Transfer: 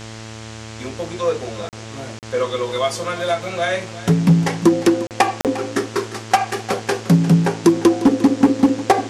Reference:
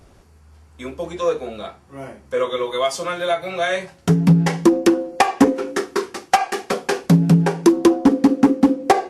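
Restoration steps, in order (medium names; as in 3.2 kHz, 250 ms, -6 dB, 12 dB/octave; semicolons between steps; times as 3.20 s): de-hum 110.8 Hz, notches 30; interpolate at 1.69/2.19/5.07/5.41 s, 38 ms; noise print and reduce 14 dB; inverse comb 352 ms -15.5 dB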